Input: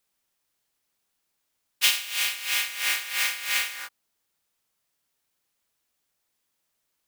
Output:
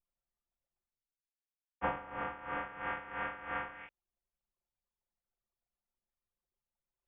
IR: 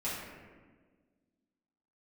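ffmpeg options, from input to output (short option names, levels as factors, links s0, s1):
-af "lowpass=f=3100:t=q:w=0.5098,lowpass=f=3100:t=q:w=0.6013,lowpass=f=3100:t=q:w=0.9,lowpass=f=3100:t=q:w=2.563,afreqshift=-3700,tiltshelf=f=970:g=6,areverse,acompressor=mode=upward:threshold=0.00355:ratio=2.5,areverse,anlmdn=0.000398,volume=0.376"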